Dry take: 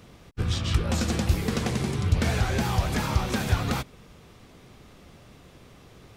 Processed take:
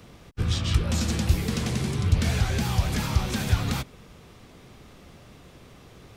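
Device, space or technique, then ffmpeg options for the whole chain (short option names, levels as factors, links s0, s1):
one-band saturation: -filter_complex "[0:a]acrossover=split=240|2200[s0][s1][s2];[s1]asoftclip=type=tanh:threshold=0.0178[s3];[s0][s3][s2]amix=inputs=3:normalize=0,volume=1.19"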